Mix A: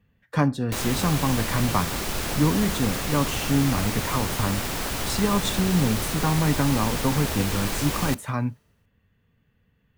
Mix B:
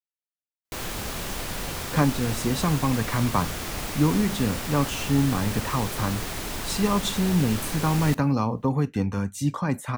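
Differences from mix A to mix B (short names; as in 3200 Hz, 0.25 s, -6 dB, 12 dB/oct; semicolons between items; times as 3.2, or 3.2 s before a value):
speech: entry +1.60 s; background -3.5 dB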